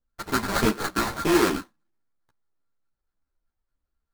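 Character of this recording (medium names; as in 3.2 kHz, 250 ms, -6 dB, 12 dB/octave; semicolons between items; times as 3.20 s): a buzz of ramps at a fixed pitch in blocks of 32 samples; phasing stages 12, 1.6 Hz, lowest notch 380–3100 Hz; aliases and images of a low sample rate 2.9 kHz, jitter 20%; a shimmering, thickened sound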